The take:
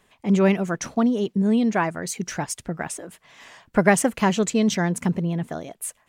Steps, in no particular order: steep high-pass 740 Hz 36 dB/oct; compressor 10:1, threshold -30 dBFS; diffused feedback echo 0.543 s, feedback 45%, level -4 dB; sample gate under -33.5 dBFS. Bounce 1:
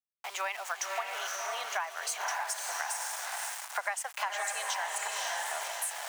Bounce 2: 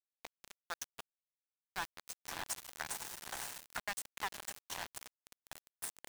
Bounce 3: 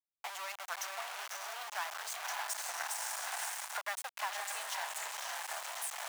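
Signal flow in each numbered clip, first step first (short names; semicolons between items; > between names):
diffused feedback echo > sample gate > steep high-pass > compressor; diffused feedback echo > compressor > steep high-pass > sample gate; diffused feedback echo > compressor > sample gate > steep high-pass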